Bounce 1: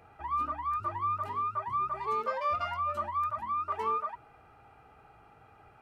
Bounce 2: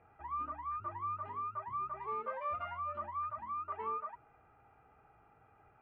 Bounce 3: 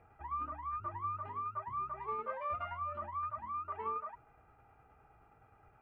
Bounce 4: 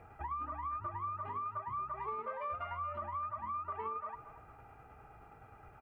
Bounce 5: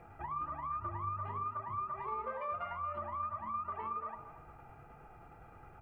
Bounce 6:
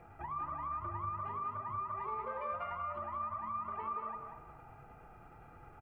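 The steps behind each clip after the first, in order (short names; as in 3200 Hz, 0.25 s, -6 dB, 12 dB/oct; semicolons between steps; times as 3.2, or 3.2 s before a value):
LPF 2500 Hz 24 dB/oct; gain -7.5 dB
low shelf 66 Hz +10 dB; tremolo saw down 9.6 Hz, depth 35%; gain +1.5 dB
compressor, threshold -45 dBFS, peak gain reduction 11 dB; feedback echo 0.229 s, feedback 32%, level -14 dB; gain +7.5 dB
on a send at -2 dB: running mean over 23 samples + reverb RT60 0.55 s, pre-delay 5 ms
echo 0.189 s -6.5 dB; gain -1 dB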